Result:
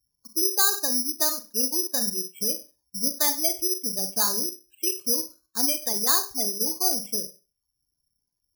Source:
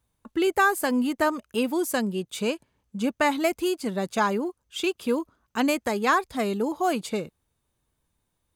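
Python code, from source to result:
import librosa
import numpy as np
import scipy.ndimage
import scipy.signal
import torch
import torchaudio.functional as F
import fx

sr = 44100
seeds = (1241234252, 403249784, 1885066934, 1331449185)

y = fx.spec_gate(x, sr, threshold_db=-15, keep='strong')
y = fx.dereverb_blind(y, sr, rt60_s=0.59)
y = fx.rev_schroeder(y, sr, rt60_s=0.31, comb_ms=31, drr_db=8.0)
y = (np.kron(scipy.signal.resample_poly(y, 1, 8), np.eye(8)[0]) * 8)[:len(y)]
y = y * 10.0 ** (-9.0 / 20.0)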